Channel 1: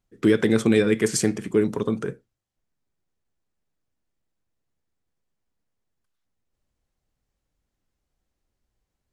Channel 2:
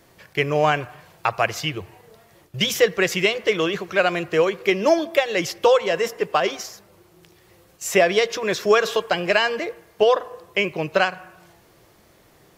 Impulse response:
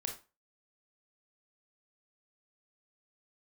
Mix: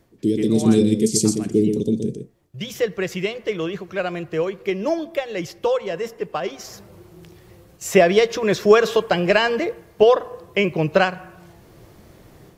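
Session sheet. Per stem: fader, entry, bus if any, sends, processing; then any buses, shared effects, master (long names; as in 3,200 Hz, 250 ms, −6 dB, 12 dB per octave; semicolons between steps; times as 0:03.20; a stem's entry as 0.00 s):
−1.5 dB, 0.00 s, no send, echo send −6.5 dB, Chebyshev band-stop filter 340–4,500 Hz, order 2
0:00.71 −9 dB → 0:01.11 −16 dB → 0:06.54 −16 dB → 0:06.74 −5.5 dB, 0.00 s, send −21.5 dB, no echo send, low-shelf EQ 430 Hz +11 dB; automatic ducking −17 dB, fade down 0.25 s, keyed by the first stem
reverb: on, RT60 0.30 s, pre-delay 22 ms
echo: single-tap delay 123 ms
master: automatic gain control gain up to 6.5 dB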